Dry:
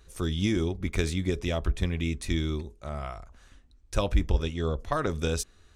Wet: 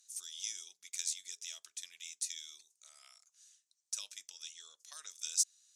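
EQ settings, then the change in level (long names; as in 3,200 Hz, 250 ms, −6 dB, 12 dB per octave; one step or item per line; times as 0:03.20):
resonant band-pass 6,400 Hz, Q 2
first difference
+8.0 dB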